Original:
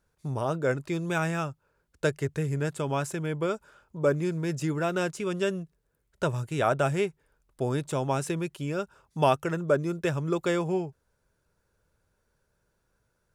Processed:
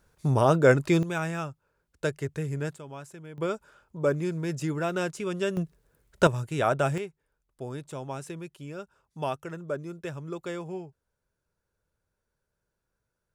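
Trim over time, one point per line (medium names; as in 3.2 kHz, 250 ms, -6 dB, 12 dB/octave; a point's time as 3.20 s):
+8 dB
from 1.03 s -2.5 dB
from 2.76 s -13 dB
from 3.38 s -1 dB
from 5.57 s +8 dB
from 6.27 s 0 dB
from 6.98 s -8.5 dB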